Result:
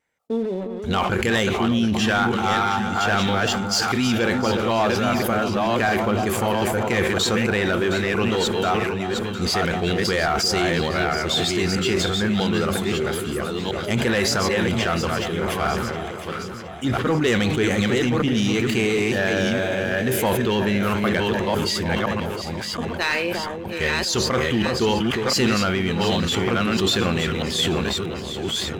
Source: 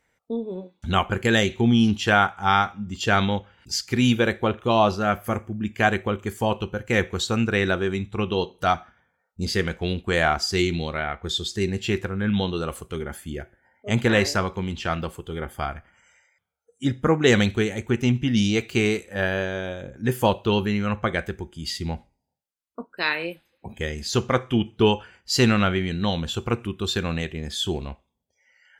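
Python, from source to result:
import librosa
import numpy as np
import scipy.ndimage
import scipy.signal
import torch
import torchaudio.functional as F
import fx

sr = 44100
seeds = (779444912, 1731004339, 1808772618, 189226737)

p1 = fx.reverse_delay(x, sr, ms=653, wet_db=-5.5)
p2 = fx.low_shelf(p1, sr, hz=120.0, db=-9.5)
p3 = fx.over_compress(p2, sr, threshold_db=-25.0, ratio=-0.5)
p4 = p2 + (p3 * 10.0 ** (-2.0 / 20.0))
p5 = fx.leveller(p4, sr, passes=2)
p6 = fx.vibrato(p5, sr, rate_hz=2.3, depth_cents=25.0)
p7 = p6 + fx.echo_alternate(p6, sr, ms=357, hz=1100.0, feedback_pct=75, wet_db=-10.0, dry=0)
p8 = fx.sustainer(p7, sr, db_per_s=25.0)
y = p8 * 10.0 ** (-8.5 / 20.0)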